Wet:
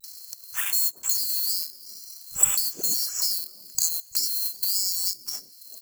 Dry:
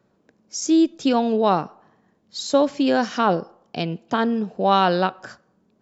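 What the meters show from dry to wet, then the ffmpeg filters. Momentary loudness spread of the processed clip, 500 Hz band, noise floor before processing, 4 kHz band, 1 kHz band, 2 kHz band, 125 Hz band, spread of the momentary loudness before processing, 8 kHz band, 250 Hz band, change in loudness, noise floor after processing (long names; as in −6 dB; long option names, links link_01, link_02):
16 LU, −31.5 dB, −65 dBFS, +3.0 dB, −27.5 dB, −10.5 dB, −23.5 dB, 12 LU, can't be measured, −33.5 dB, −2.5 dB, −50 dBFS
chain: -filter_complex "[0:a]afftfilt=real='real(if(lt(b,736),b+184*(1-2*mod(floor(b/184),2)),b),0)':imag='imag(if(lt(b,736),b+184*(1-2*mod(floor(b/184),2)),b),0)':win_size=2048:overlap=0.75,acompressor=threshold=-31dB:ratio=8,acrusher=bits=3:mode=log:mix=0:aa=0.000001,aexciter=amount=14.7:drive=2.2:freq=6200,acompressor=mode=upward:threshold=-28dB:ratio=2.5,acrossover=split=160|530[link_01][link_02][link_03];[link_03]adelay=40[link_04];[link_02]adelay=430[link_05];[link_01][link_05][link_04]amix=inputs=3:normalize=0"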